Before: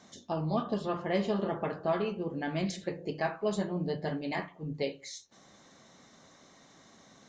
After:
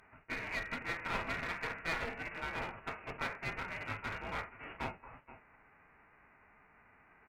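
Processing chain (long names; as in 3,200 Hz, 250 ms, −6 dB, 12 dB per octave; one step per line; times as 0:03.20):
spectral envelope flattened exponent 0.3
high-pass filter 1,000 Hz 12 dB per octave
voice inversion scrambler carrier 3,100 Hz
0:03.19–0:03.70: high-frequency loss of the air 110 metres
single-tap delay 476 ms −18.5 dB
asymmetric clip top −39.5 dBFS
level +1 dB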